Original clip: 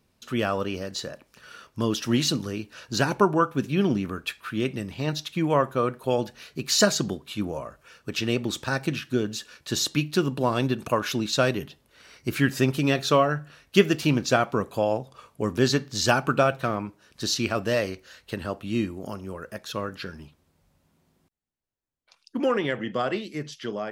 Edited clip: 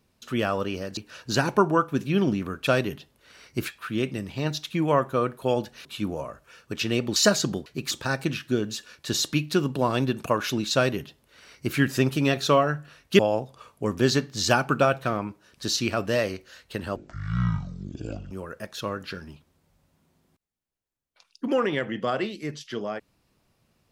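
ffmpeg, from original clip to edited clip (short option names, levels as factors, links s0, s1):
-filter_complex "[0:a]asplit=11[s0][s1][s2][s3][s4][s5][s6][s7][s8][s9][s10];[s0]atrim=end=0.972[s11];[s1]atrim=start=2.598:end=4.302[s12];[s2]atrim=start=11.368:end=12.382[s13];[s3]atrim=start=4.298:end=6.472[s14];[s4]atrim=start=7.218:end=8.532[s15];[s5]atrim=start=6.718:end=7.222[s16];[s6]atrim=start=6.468:end=6.722[s17];[s7]atrim=start=8.528:end=13.812[s18];[s8]atrim=start=14.768:end=18.544[s19];[s9]atrim=start=18.54:end=19.23,asetpts=PTS-STARTPTS,asetrate=22491,aresample=44100[s20];[s10]atrim=start=19.226[s21];[s11][s12]acrossfade=d=0.004:c1=hsin:c2=hsin[s22];[s22][s13]acrossfade=d=0.004:c1=hsin:c2=hsin[s23];[s23][s14]acrossfade=d=0.004:c1=hsin:c2=hsin[s24];[s24][s15]acrossfade=d=0.004:c1=hsin:c2=hsin[s25];[s25][s16]acrossfade=d=0.004:c1=hsin:c2=hsin[s26];[s26][s17]acrossfade=d=0.004:c1=hsin:c2=hsin[s27];[s27][s18]acrossfade=d=0.004:c1=hsin:c2=hsin[s28];[s28][s19]acrossfade=d=0.004:c1=hsin:c2=hsin[s29];[s29][s20]acrossfade=d=0.004:c1=hsin:c2=hsin[s30];[s30][s21]acrossfade=d=0.004:c1=hsin:c2=hsin"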